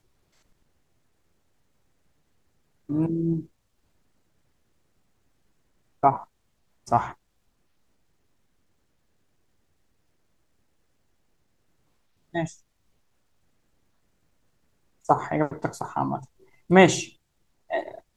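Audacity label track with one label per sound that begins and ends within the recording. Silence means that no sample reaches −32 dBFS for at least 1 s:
2.900000	3.400000	sound
6.030000	7.120000	sound
12.350000	12.470000	sound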